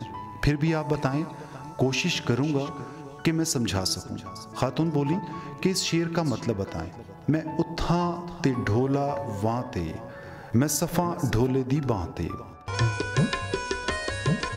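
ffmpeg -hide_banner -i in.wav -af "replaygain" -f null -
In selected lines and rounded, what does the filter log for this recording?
track_gain = +7.8 dB
track_peak = 0.220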